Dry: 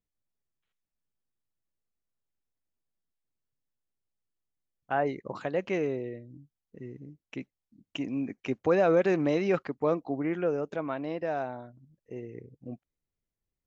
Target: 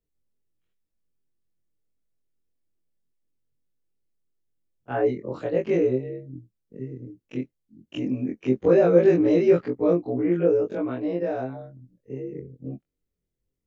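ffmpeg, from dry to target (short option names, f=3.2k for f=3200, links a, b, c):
-af "afftfilt=real='re':imag='-im':win_size=2048:overlap=0.75,lowshelf=f=610:t=q:w=1.5:g=7.5,volume=3.5dB"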